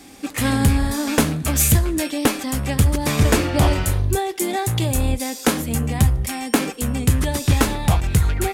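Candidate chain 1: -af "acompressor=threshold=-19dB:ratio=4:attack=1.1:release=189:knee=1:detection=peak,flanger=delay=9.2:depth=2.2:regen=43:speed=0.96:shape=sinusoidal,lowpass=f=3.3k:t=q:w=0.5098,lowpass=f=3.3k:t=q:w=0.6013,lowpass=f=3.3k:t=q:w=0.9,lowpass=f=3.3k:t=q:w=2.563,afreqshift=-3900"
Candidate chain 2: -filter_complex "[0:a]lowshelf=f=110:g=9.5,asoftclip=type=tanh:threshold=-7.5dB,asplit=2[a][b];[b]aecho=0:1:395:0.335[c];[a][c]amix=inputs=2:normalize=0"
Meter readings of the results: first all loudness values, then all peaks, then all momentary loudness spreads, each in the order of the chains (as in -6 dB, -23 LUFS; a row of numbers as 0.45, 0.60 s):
-25.5, -18.0 LUFS; -15.0, -5.5 dBFS; 5, 5 LU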